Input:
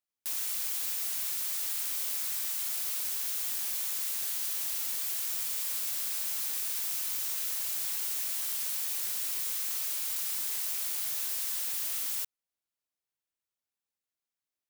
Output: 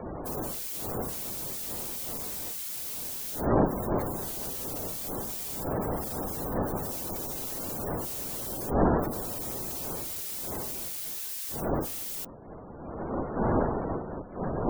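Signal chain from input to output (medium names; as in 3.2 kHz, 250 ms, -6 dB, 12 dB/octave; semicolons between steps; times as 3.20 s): wind noise 600 Hz -30 dBFS; spectral gate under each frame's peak -20 dB strong; trim -3 dB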